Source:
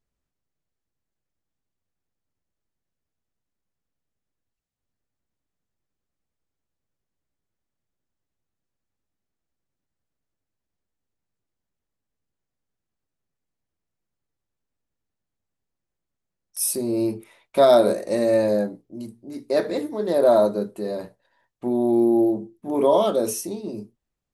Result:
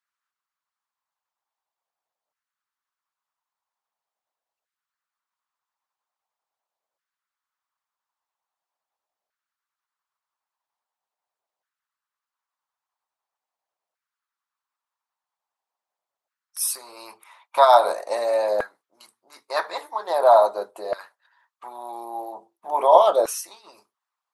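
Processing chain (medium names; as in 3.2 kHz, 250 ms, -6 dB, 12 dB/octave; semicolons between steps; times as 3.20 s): graphic EQ 125/250/1000/4000 Hz +7/-4/+9/+3 dB; LFO high-pass saw down 0.43 Hz 600–1500 Hz; harmonic-percussive split percussive +9 dB; trim -8.5 dB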